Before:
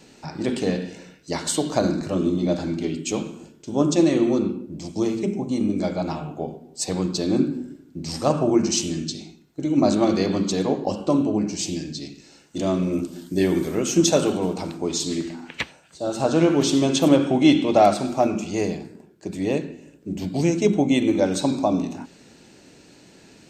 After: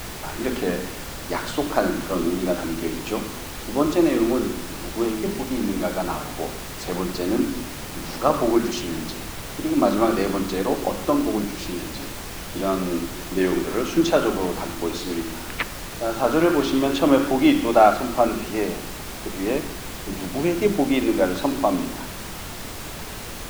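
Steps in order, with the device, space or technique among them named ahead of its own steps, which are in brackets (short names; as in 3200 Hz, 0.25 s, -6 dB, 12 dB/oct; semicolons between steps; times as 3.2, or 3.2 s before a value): horn gramophone (BPF 230–3200 Hz; bell 1300 Hz +8.5 dB 0.77 oct; wow and flutter; pink noise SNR 10 dB)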